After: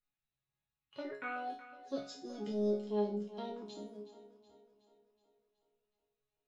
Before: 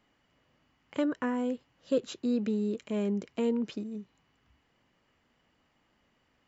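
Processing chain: expander on every frequency bin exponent 1.5; in parallel at -3 dB: compressor with a negative ratio -32 dBFS; on the sum: formant shift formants +5 st; chord resonator C#3 sus4, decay 0.4 s; two-band feedback delay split 320 Hz, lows 239 ms, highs 371 ms, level -14.5 dB; trim +5 dB

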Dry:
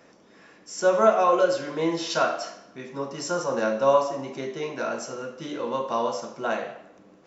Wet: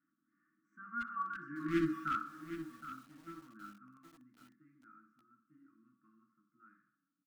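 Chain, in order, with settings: Doppler pass-by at 1.79 s, 21 m/s, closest 1.8 m; elliptic band-pass 140–1500 Hz, stop band 40 dB; comb 2.9 ms, depth 31%; in parallel at -5.5 dB: wavefolder -28 dBFS; on the sum: brick-wall FIR band-stop 330–1100 Hz; feedback delay 63 ms, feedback 38%, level -22 dB; bit-crushed delay 769 ms, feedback 35%, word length 9-bit, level -11 dB

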